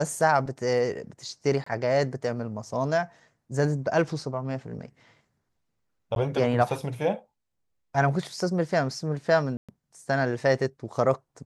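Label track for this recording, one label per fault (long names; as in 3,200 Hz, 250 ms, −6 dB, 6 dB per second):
1.640000	1.660000	drop-out 24 ms
6.150000	6.160000	drop-out 12 ms
9.570000	9.690000	drop-out 116 ms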